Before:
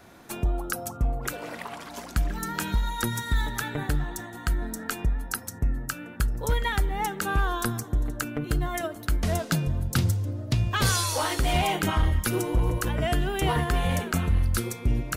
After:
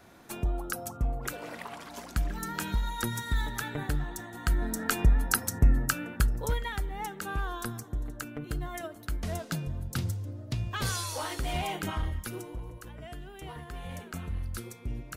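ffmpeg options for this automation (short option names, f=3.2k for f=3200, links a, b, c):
-af "volume=11dB,afade=t=in:st=4.25:d=0.95:silence=0.375837,afade=t=out:st=5.79:d=0.86:silence=0.237137,afade=t=out:st=11.92:d=0.76:silence=0.316228,afade=t=in:st=13.6:d=0.74:silence=0.473151"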